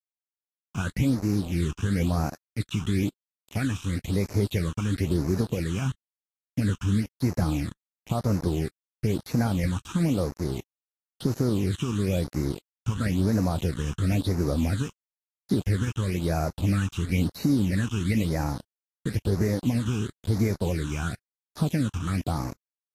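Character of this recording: a quantiser's noise floor 6-bit, dither none; phasing stages 8, 0.99 Hz, lowest notch 570–3200 Hz; Vorbis

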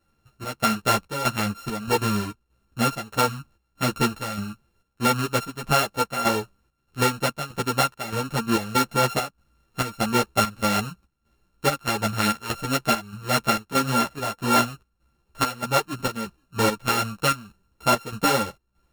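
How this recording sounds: a buzz of ramps at a fixed pitch in blocks of 32 samples; chopped level 1.6 Hz, depth 65%, duty 70%; a shimmering, thickened sound

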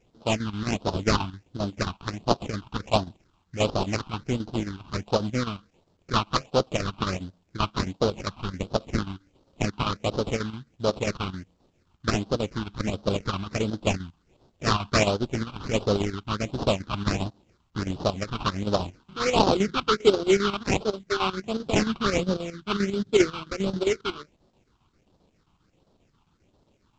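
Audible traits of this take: chopped level 7.5 Hz, depth 60%, duty 75%; aliases and images of a low sample rate 1.8 kHz, jitter 20%; phasing stages 6, 1.4 Hz, lowest notch 490–2200 Hz; µ-law

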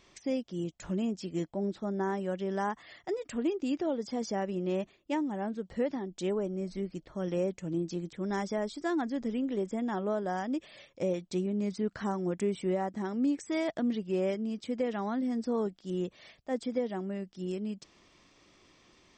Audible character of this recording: noise floor -64 dBFS; spectral tilt -6.0 dB/octave

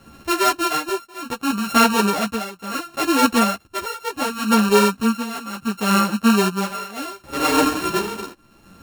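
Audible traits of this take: a buzz of ramps at a fixed pitch in blocks of 32 samples; tremolo triangle 0.69 Hz, depth 90%; a shimmering, thickened sound

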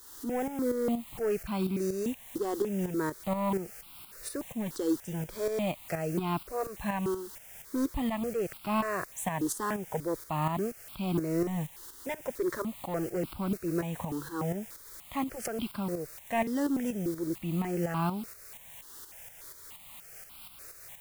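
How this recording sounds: a quantiser's noise floor 8-bit, dither triangular; tremolo saw up 4.2 Hz, depth 60%; notches that jump at a steady rate 3.4 Hz 650–1800 Hz

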